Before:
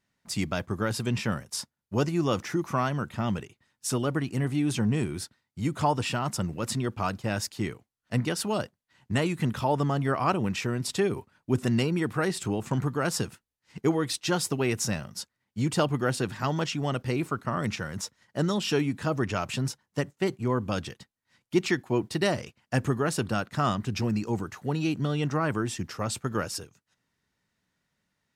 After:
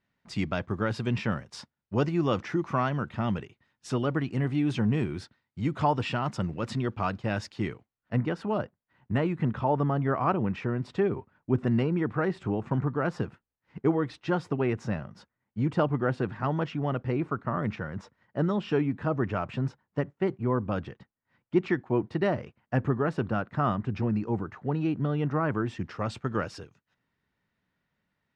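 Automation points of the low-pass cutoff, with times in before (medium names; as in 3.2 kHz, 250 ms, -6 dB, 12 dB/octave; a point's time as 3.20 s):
7.71 s 3.3 kHz
8.22 s 1.7 kHz
25.39 s 1.7 kHz
26.04 s 3 kHz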